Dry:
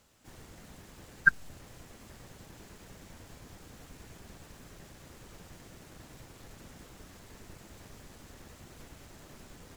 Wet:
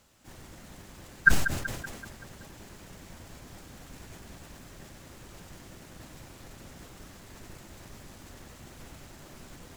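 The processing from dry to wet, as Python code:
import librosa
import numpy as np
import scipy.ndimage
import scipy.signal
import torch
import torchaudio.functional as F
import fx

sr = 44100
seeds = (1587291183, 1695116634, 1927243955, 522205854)

y = fx.notch(x, sr, hz=450.0, q=15.0)
y = fx.echo_feedback(y, sr, ms=190, feedback_pct=54, wet_db=-12)
y = fx.sustainer(y, sr, db_per_s=63.0)
y = y * librosa.db_to_amplitude(2.5)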